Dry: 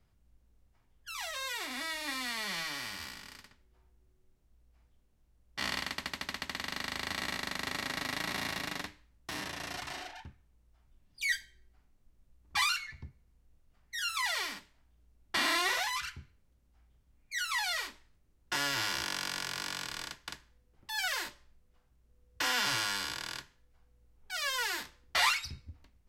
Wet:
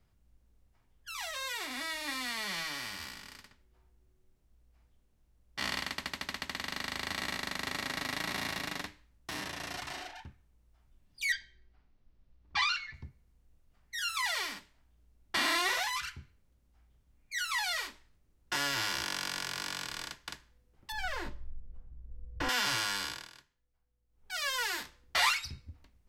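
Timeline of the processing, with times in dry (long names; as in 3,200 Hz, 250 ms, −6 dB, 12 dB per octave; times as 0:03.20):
0:11.32–0:12.94: low-pass filter 5,200 Hz 24 dB per octave
0:20.92–0:22.49: spectral tilt −4.5 dB per octave
0:23.06–0:24.32: duck −14 dB, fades 0.24 s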